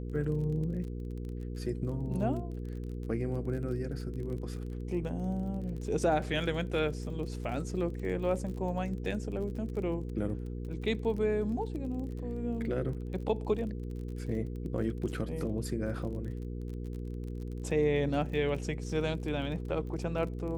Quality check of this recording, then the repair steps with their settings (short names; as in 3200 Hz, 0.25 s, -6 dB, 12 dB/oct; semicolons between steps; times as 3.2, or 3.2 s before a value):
crackle 30/s -40 dBFS
hum 60 Hz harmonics 8 -38 dBFS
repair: de-click; de-hum 60 Hz, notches 8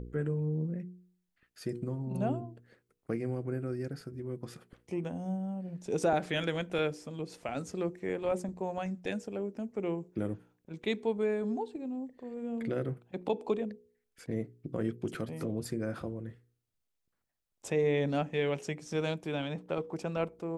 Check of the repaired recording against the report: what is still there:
none